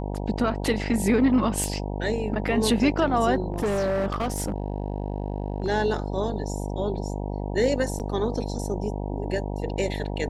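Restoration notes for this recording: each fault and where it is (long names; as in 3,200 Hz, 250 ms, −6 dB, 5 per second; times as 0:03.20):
mains buzz 50 Hz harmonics 19 −30 dBFS
0:01.64: click
0:03.52–0:05.68: clipping −21 dBFS
0:07.99–0:08.00: drop-out 8.7 ms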